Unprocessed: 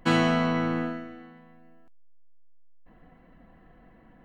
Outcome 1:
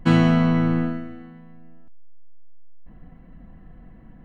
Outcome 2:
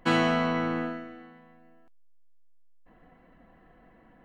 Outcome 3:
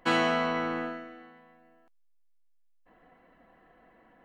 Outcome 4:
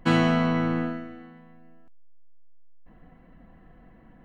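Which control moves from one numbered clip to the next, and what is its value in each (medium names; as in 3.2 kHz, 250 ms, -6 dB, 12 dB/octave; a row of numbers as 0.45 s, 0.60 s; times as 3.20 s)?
tone controls, bass: +13 dB, -5 dB, -15 dB, +4 dB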